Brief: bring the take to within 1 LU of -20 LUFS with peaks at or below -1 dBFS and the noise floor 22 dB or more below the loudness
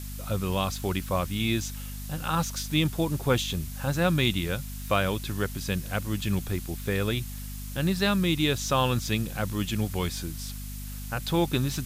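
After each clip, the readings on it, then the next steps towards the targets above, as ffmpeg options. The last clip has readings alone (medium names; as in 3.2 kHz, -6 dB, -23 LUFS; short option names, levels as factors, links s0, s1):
hum 50 Hz; highest harmonic 250 Hz; hum level -34 dBFS; noise floor -37 dBFS; noise floor target -50 dBFS; loudness -28.0 LUFS; peak level -10.0 dBFS; loudness target -20.0 LUFS
-> -af "bandreject=f=50:t=h:w=6,bandreject=f=100:t=h:w=6,bandreject=f=150:t=h:w=6,bandreject=f=200:t=h:w=6,bandreject=f=250:t=h:w=6"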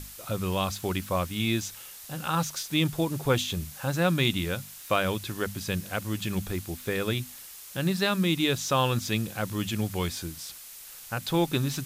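hum not found; noise floor -45 dBFS; noise floor target -51 dBFS
-> -af "afftdn=nr=6:nf=-45"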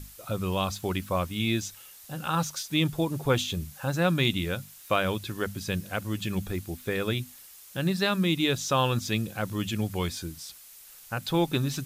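noise floor -50 dBFS; noise floor target -51 dBFS
-> -af "afftdn=nr=6:nf=-50"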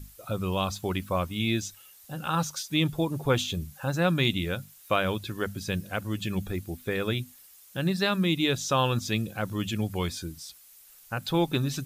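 noise floor -54 dBFS; loudness -29.0 LUFS; peak level -10.5 dBFS; loudness target -20.0 LUFS
-> -af "volume=2.82"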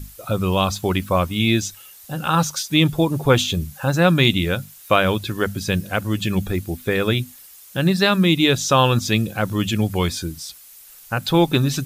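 loudness -20.0 LUFS; peak level -1.5 dBFS; noise floor -45 dBFS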